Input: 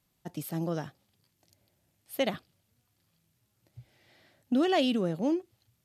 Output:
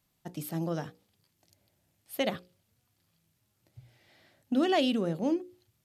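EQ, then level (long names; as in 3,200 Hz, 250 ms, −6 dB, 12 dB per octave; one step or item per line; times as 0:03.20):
mains-hum notches 60/120/180/240/300/360/420/480/540 Hz
0.0 dB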